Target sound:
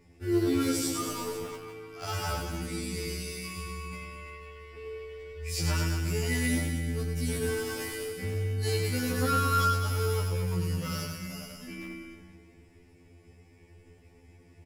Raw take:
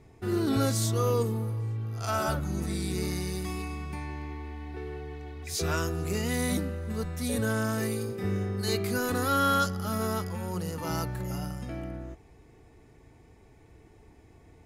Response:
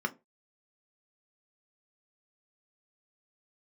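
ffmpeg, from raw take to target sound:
-filter_complex "[0:a]asettb=1/sr,asplit=3[link_01][link_02][link_03];[link_01]atrim=end=2.974[link_04];[link_02]atrim=start=2.97:end=3.58,asetpts=PTS-STARTPTS,afade=type=in:duration=0.004:curve=qsin,afade=type=out:start_time=0.606:duration=0.004:curve=qsin,highpass=180[link_05];[link_03]atrim=start=3.576[link_06];[link_04][link_05]acrossfade=duration=0.004:curve1=hsin:curve2=qsin[link_07];[link_07][link_06]acrossfade=duration=0.004:curve1=qsin:curve2=hsin,aecho=1:1:100|215|347.2|499.3|674.2:0.631|0.398|0.251|0.158|0.1,asettb=1/sr,asplit=3[link_08][link_09][link_10];[link_08]atrim=end=1.434[link_11];[link_09]atrim=start=1.43:end=2.05,asetpts=PTS-STARTPTS,afade=type=in:duration=0.004:curve=qsin,afade=type=out:start_time=0.616:duration=0.004:curve=qsin,asplit=2[link_12][link_13];[link_13]highpass=frequency=720:poles=1,volume=12dB,asoftclip=type=tanh:threshold=-15.5dB[link_14];[link_12][link_14]amix=inputs=2:normalize=0,lowpass=frequency=2000:poles=1,volume=-6dB[link_15];[link_10]atrim=start=2.046[link_16];[link_11][link_15]acrossfade=duration=0.004:curve1=hsin:curve2=qsin[link_17];[link_17][link_16]acrossfade=duration=0.004:curve1=qsin:curve2=hsin,acrossover=split=660|910[link_18][link_19][link_20];[link_19]acrusher=bits=6:mix=0:aa=0.000001[link_21];[link_20]asplit=2[link_22][link_23];[link_23]adelay=12,volume=-4.5dB[link_24];[link_22][link_24]amix=inputs=2:normalize=0[link_25];[link_18][link_21][link_25]amix=inputs=3:normalize=0,afftfilt=real='re*2*eq(mod(b,4),0)':imag='im*2*eq(mod(b,4),0)':win_size=2048:overlap=0.75"

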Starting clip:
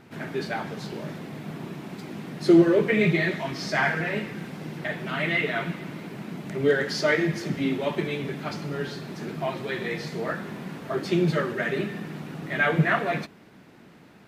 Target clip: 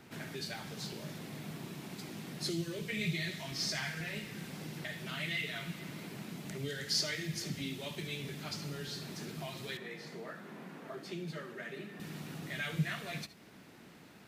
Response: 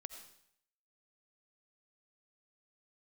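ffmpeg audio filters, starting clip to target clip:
-filter_complex "[0:a]highshelf=frequency=3200:gain=9[link_01];[1:a]atrim=start_sample=2205,atrim=end_sample=3528[link_02];[link_01][link_02]afir=irnorm=-1:irlink=0,acrossover=split=150|3000[link_03][link_04][link_05];[link_04]acompressor=threshold=-45dB:ratio=4[link_06];[link_03][link_06][link_05]amix=inputs=3:normalize=0,asettb=1/sr,asplit=3[link_07][link_08][link_09];[link_07]atrim=end=9.774[link_10];[link_08]atrim=start=9.77:end=12,asetpts=PTS-STARTPTS,afade=type=in:duration=0.004:curve=qsin,afade=type=out:start_time=2.226:duration=0.004:curve=qsin,acrossover=split=180 2200:gain=0.0708 1 0.224[link_11][link_12][link_13];[link_11][link_12][link_13]amix=inputs=3:normalize=0[link_14];[link_09]atrim=start=11.996[link_15];[link_10][link_14]acrossfade=duration=0.004:curve1=hsin:curve2=qsin[link_16];[link_16][link_15]acrossfade=duration=0.004:curve1=qsin:curve2=hsin"

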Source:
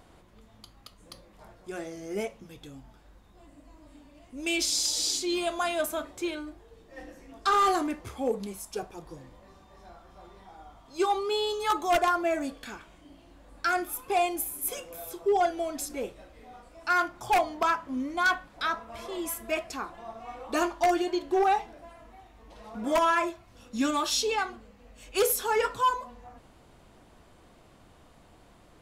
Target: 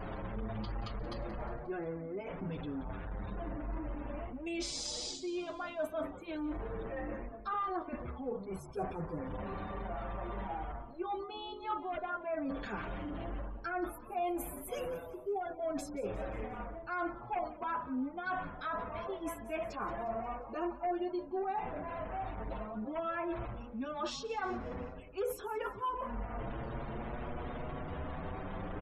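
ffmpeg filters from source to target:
ffmpeg -i in.wav -filter_complex "[0:a]aeval=exprs='val(0)+0.5*0.01*sgn(val(0))':channel_layout=same,lowpass=frequency=1100:poles=1,areverse,acompressor=threshold=-42dB:ratio=6,areverse,afftfilt=real='re*gte(hypot(re,im),0.00141)':imag='im*gte(hypot(re,im),0.00141)':win_size=1024:overlap=0.75,adynamicequalizer=threshold=0.00126:dfrequency=320:dqfactor=2.6:tfrequency=320:tqfactor=2.6:attack=5:release=100:ratio=0.375:range=1.5:mode=cutabove:tftype=bell,asplit=5[link_01][link_02][link_03][link_04][link_05];[link_02]adelay=178,afreqshift=-58,volume=-17dB[link_06];[link_03]adelay=356,afreqshift=-116,volume=-23.7dB[link_07];[link_04]adelay=534,afreqshift=-174,volume=-30.5dB[link_08];[link_05]adelay=712,afreqshift=-232,volume=-37.2dB[link_09];[link_01][link_06][link_07][link_08][link_09]amix=inputs=5:normalize=0,asplit=2[link_10][link_11];[link_11]adelay=7.2,afreqshift=0.31[link_12];[link_10][link_12]amix=inputs=2:normalize=1,volume=9dB" out.wav

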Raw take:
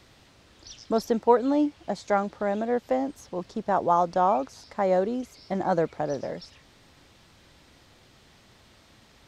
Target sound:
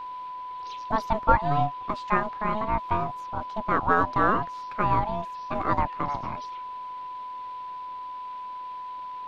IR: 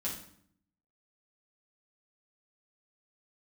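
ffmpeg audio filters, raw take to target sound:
-filter_complex "[0:a]highshelf=frequency=4600:width_type=q:width=1.5:gain=-12,aeval=exprs='val(0)*sin(2*PI*430*n/s)':channel_layout=same,acrossover=split=570|1100[link_01][link_02][link_03];[link_01]aeval=exprs='max(val(0),0)':channel_layout=same[link_04];[link_04][link_02][link_03]amix=inputs=3:normalize=0,aeval=exprs='val(0)+0.0126*sin(2*PI*1000*n/s)':channel_layout=same,volume=4dB"

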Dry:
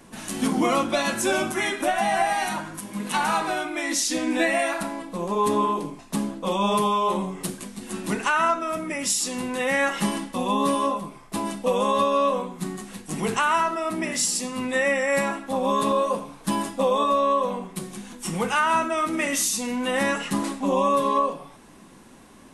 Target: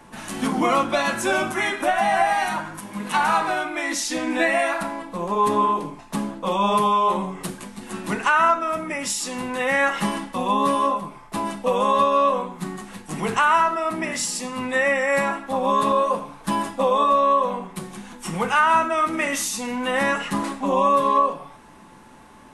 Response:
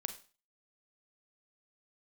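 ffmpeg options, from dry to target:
-filter_complex "[0:a]equalizer=frequency=1200:width_type=o:width=2.7:gain=8,acrossover=split=170|1300[link_01][link_02][link_03];[link_01]acontrast=39[link_04];[link_04][link_02][link_03]amix=inputs=3:normalize=0,aeval=exprs='val(0)+0.00355*sin(2*PI*870*n/s)':channel_layout=same,volume=-3.5dB"

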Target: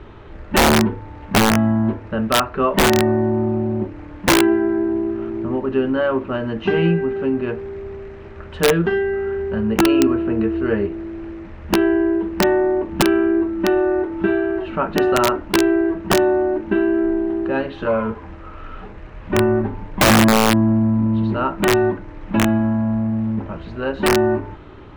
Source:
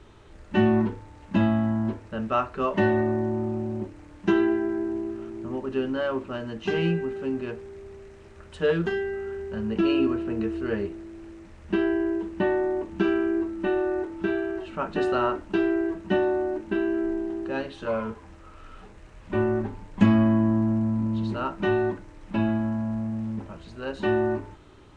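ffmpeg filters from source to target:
ffmpeg -i in.wav -filter_complex "[0:a]lowpass=2600,asplit=2[link_01][link_02];[link_02]acompressor=threshold=-33dB:ratio=8,volume=-1dB[link_03];[link_01][link_03]amix=inputs=2:normalize=0,aeval=exprs='(mod(4.47*val(0)+1,2)-1)/4.47':channel_layout=same,volume=6dB" out.wav

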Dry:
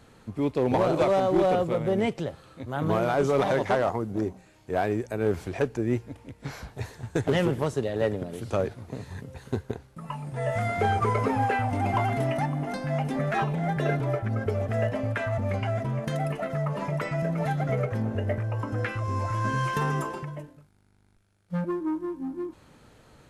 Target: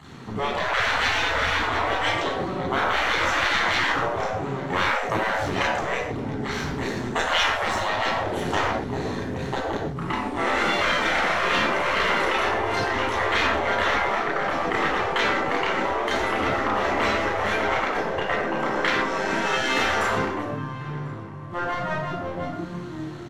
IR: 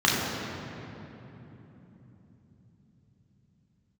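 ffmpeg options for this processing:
-filter_complex "[0:a]aeval=exprs='max(val(0),0)':channel_layout=same,asplit=2[link_01][link_02];[link_02]adelay=1044,lowpass=frequency=2600:poles=1,volume=-19.5dB,asplit=2[link_03][link_04];[link_04]adelay=1044,lowpass=frequency=2600:poles=1,volume=0.51,asplit=2[link_05][link_06];[link_06]adelay=1044,lowpass=frequency=2600:poles=1,volume=0.51,asplit=2[link_07][link_08];[link_08]adelay=1044,lowpass=frequency=2600:poles=1,volume=0.51[link_09];[link_01][link_03][link_05][link_07][link_09]amix=inputs=5:normalize=0[link_10];[1:a]atrim=start_sample=2205,afade=type=out:start_time=0.21:duration=0.01,atrim=end_sample=9702[link_11];[link_10][link_11]afir=irnorm=-1:irlink=0,afftfilt=real='re*lt(hypot(re,im),0.447)':imag='im*lt(hypot(re,im),0.447)':win_size=1024:overlap=0.75"

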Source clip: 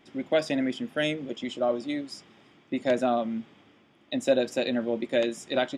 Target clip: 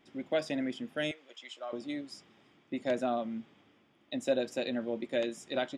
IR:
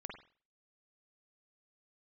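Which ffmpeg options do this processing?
-filter_complex "[0:a]asettb=1/sr,asplit=3[link_01][link_02][link_03];[link_01]atrim=end=1.114[link_04];[link_02]atrim=start=1.11:end=1.73,asetpts=PTS-STARTPTS,afade=type=in:duration=0.004:curve=qsin,afade=type=out:start_time=0.616:duration=0.004:curve=qsin,highpass=1000[link_05];[link_03]atrim=start=1.726[link_06];[link_04][link_05]acrossfade=duration=0.004:curve1=hsin:curve2=qsin[link_07];[link_07][link_06]acrossfade=duration=0.004:curve1=qsin:curve2=hsin,volume=-6.5dB"

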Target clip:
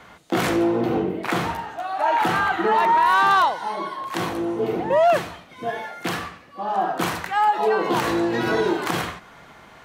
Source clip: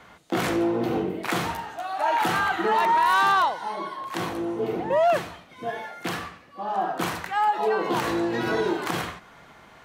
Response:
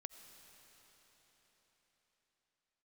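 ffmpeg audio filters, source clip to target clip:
-filter_complex "[0:a]asettb=1/sr,asplit=3[link_01][link_02][link_03];[link_01]atrim=end=0.814[link_04];[link_02]atrim=start=0.81:end=3.31,asetpts=PTS-STARTPTS,afade=type=in:duration=0.004:curve=qsin,afade=type=out:start_time=2.496:duration=0.004:curve=qsin,highshelf=frequency=3600:gain=-7[link_05];[link_03]atrim=start=3.306[link_06];[link_04][link_05]acrossfade=duration=0.004:curve1=hsin:curve2=qsin[link_07];[link_07][link_06]acrossfade=duration=0.004:curve1=qsin:curve2=hsin,volume=3.5dB"

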